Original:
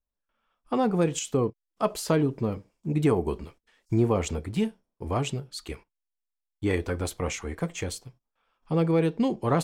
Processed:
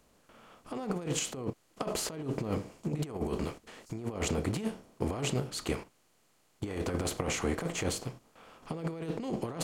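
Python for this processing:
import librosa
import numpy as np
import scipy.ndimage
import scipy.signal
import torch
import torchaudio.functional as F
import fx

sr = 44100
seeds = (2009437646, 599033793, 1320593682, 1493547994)

y = fx.bin_compress(x, sr, power=0.6)
y = fx.over_compress(y, sr, threshold_db=-25.0, ratio=-0.5)
y = F.gain(torch.from_numpy(y), -7.0).numpy()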